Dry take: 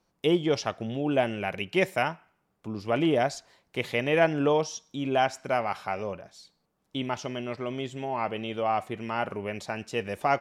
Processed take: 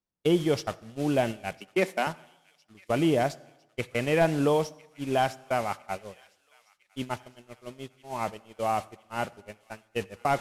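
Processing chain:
linear delta modulator 64 kbit/s, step −34.5 dBFS
0:01.60–0:02.07: Butterworth high-pass 190 Hz 48 dB per octave
noise gate −29 dBFS, range −53 dB
low-shelf EQ 240 Hz +5.5 dB
delay with a high-pass on its return 1,006 ms, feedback 64%, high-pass 1,800 Hz, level −23 dB
on a send at −21.5 dB: convolution reverb RT60 1.0 s, pre-delay 48 ms
on the sum: level −1.5 dB

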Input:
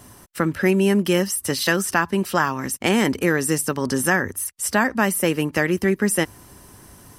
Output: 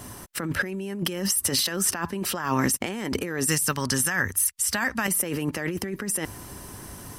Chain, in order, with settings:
0:03.46–0:05.08: parametric band 380 Hz −13.5 dB 2.5 octaves
compressor whose output falls as the input rises −27 dBFS, ratio −1

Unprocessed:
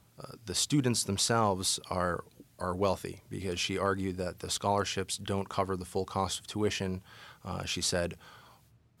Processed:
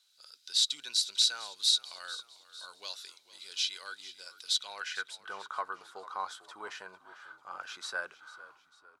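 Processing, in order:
bass and treble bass −11 dB, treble +11 dB
wave folding −12 dBFS
band-pass filter sweep 3,800 Hz → 1,200 Hz, 0:04.57–0:05.15
hollow resonant body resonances 1,500/3,900 Hz, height 12 dB, ringing for 25 ms
on a send: echo with shifted repeats 447 ms, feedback 47%, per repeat −51 Hz, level −17 dB

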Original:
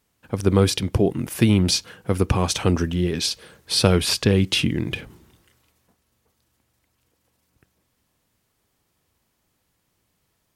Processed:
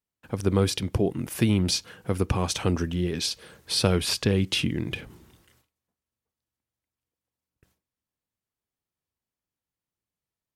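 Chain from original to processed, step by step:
in parallel at −1 dB: downward compressor, threshold −34 dBFS, peak gain reduction 21.5 dB
on the sum: noise gate with hold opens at −43 dBFS
level −6 dB

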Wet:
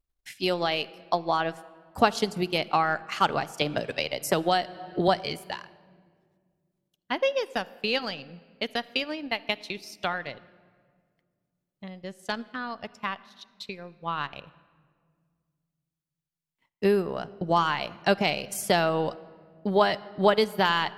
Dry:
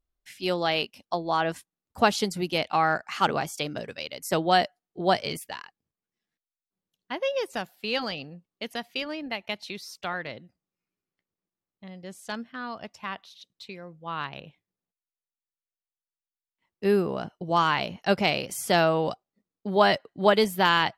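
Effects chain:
in parallel at +1.5 dB: brickwall limiter −18 dBFS, peak gain reduction 11 dB
on the sum: transient designer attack +5 dB, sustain −10 dB
rectangular room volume 3,000 cubic metres, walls mixed, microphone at 0.32 metres
0:03.61–0:05.08: multiband upward and downward compressor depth 70%
level −6.5 dB

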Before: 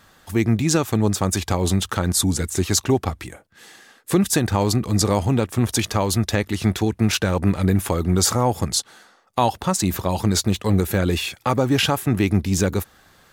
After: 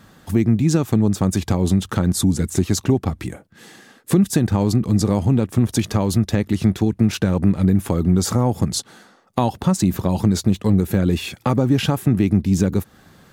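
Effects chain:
parametric band 180 Hz +12 dB 2.4 octaves
downward compressor 2 to 1, threshold −18 dBFS, peak gain reduction 8.5 dB

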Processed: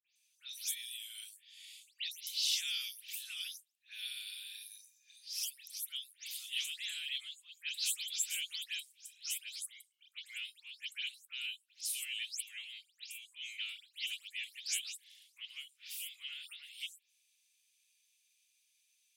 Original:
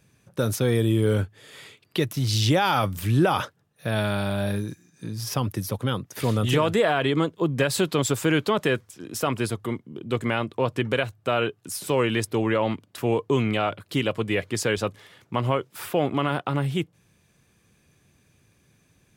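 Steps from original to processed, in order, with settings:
every frequency bin delayed by itself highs late, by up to 157 ms
Butterworth high-pass 2,600 Hz 36 dB per octave
level −4.5 dB

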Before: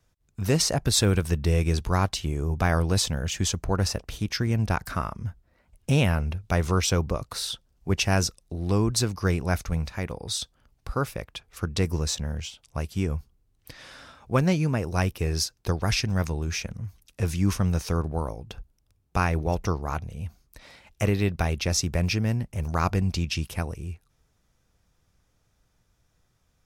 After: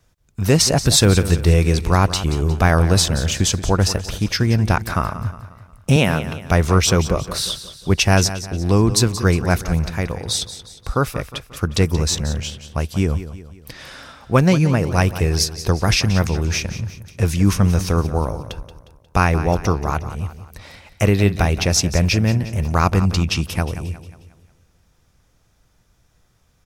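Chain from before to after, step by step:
0:05.96–0:06.45: high-pass filter 170 Hz 12 dB per octave
on a send: repeating echo 179 ms, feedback 46%, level −13 dB
on the sum: level +8 dB

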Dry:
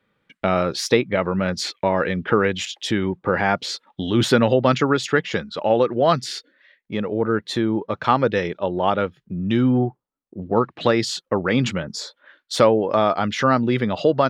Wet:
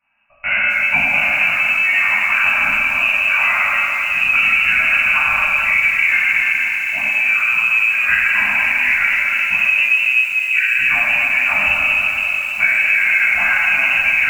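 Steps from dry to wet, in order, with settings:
convolution reverb RT60 3.4 s, pre-delay 4 ms, DRR −13.5 dB
voice inversion scrambler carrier 2,800 Hz
Chebyshev band-stop filter 280–580 Hz, order 4
downward compressor 4 to 1, threshold −6 dBFS, peak gain reduction 6.5 dB
feedback echo at a low word length 260 ms, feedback 80%, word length 4 bits, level −14.5 dB
level −6 dB

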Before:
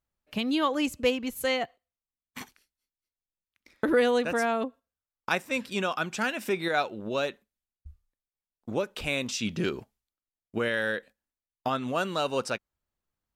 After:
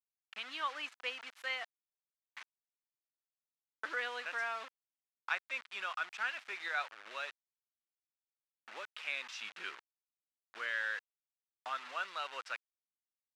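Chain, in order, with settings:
bit reduction 6 bits
four-pole ladder band-pass 1,900 Hz, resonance 20%
level +4.5 dB

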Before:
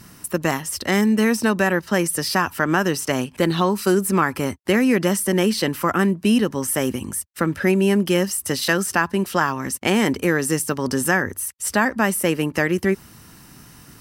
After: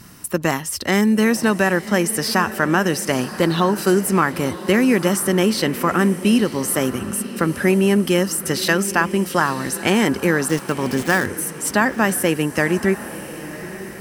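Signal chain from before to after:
0:10.48–0:11.27: gap after every zero crossing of 0.068 ms
feedback delay with all-pass diffusion 987 ms, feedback 44%, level −13.5 dB
level +1.5 dB

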